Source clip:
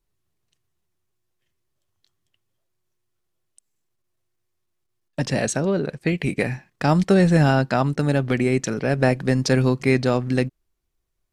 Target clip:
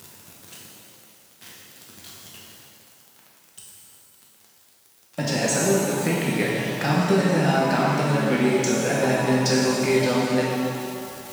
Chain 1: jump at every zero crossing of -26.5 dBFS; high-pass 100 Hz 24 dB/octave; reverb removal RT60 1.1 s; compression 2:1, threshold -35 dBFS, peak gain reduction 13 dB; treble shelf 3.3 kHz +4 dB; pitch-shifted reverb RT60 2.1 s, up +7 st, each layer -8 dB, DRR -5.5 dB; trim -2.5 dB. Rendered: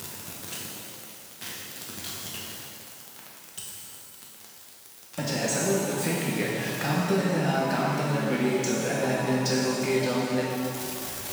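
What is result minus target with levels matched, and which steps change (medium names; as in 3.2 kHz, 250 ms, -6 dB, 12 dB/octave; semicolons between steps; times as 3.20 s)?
compression: peak gain reduction +5.5 dB; jump at every zero crossing: distortion +7 dB
change: jump at every zero crossing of -34.5 dBFS; change: compression 2:1, threshold -24 dBFS, peak gain reduction 7 dB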